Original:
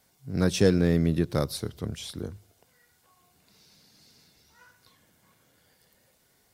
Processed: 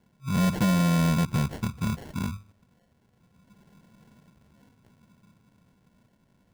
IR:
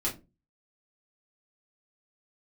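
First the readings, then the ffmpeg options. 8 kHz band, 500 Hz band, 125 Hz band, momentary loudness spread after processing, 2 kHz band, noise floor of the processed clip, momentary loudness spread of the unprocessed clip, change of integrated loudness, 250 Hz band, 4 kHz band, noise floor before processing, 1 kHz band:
0.0 dB, −9.0 dB, +2.5 dB, 11 LU, +2.5 dB, −67 dBFS, 15 LU, +0.5 dB, +1.5 dB, −1.0 dB, −67 dBFS, +8.5 dB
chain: -af "lowshelf=frequency=290:width_type=q:width=3:gain=9.5,acrusher=samples=36:mix=1:aa=0.000001,asoftclip=type=tanh:threshold=-15.5dB,volume=-4dB"

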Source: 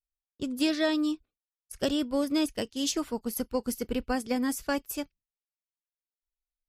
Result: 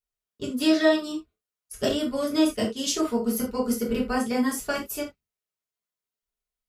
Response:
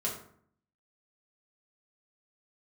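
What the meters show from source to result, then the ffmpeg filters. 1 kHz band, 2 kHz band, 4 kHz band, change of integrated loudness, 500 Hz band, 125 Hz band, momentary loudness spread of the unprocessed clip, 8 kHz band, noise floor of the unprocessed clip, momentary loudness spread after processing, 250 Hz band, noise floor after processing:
+4.5 dB, +5.0 dB, +3.5 dB, +4.5 dB, +6.0 dB, +7.0 dB, 10 LU, +4.0 dB, below −85 dBFS, 13 LU, +4.0 dB, below −85 dBFS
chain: -filter_complex "[1:a]atrim=start_sample=2205,atrim=end_sample=3969[link_01];[0:a][link_01]afir=irnorm=-1:irlink=0,volume=1dB"

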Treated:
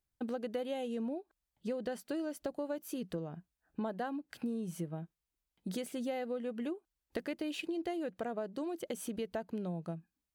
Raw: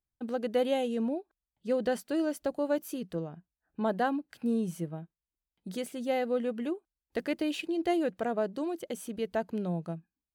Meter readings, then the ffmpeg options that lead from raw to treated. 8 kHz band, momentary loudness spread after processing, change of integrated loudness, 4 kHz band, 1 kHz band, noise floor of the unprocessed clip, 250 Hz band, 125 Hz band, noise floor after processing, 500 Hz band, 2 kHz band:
−2.5 dB, 7 LU, −7.0 dB, −5.5 dB, −8.5 dB, below −85 dBFS, −6.0 dB, −4.0 dB, below −85 dBFS, −7.5 dB, −7.5 dB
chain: -af "acompressor=threshold=-38dB:ratio=6,volume=3dB"

